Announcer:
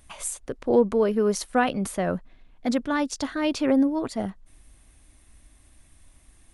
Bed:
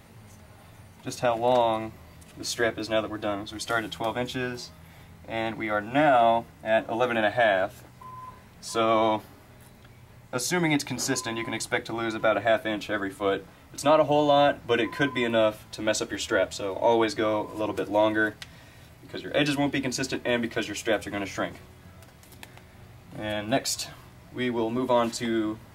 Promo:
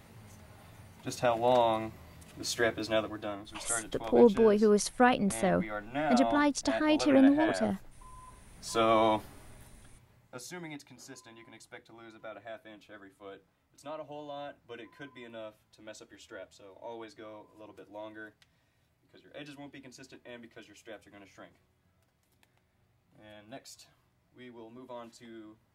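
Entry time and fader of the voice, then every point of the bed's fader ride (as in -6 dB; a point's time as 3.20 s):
3.45 s, -2.0 dB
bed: 2.94 s -3.5 dB
3.44 s -11 dB
8.26 s -11 dB
8.72 s -3 dB
9.41 s -3 dB
10.88 s -22 dB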